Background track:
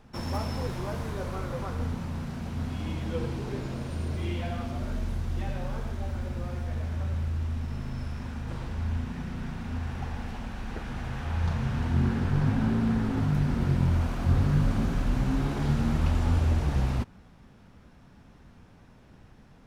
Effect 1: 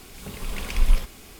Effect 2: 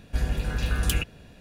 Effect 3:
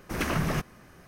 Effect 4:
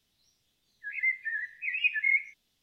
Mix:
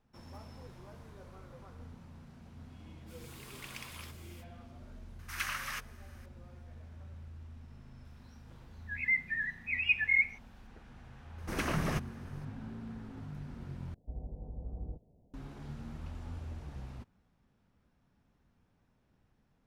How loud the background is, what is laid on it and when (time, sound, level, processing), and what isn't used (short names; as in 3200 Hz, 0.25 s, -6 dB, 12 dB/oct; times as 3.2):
background track -18.5 dB
3.06 add 1 -10 dB, fades 0.05 s + Chebyshev high-pass 1100 Hz
5.19 add 3 -3 dB + inverse Chebyshev high-pass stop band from 270 Hz, stop band 70 dB
8.05 add 4 -1.5 dB
11.38 add 3 -5 dB + bell 14000 Hz -7 dB 0.23 oct
13.94 replace with 2 -16 dB + steep low-pass 830 Hz 48 dB/oct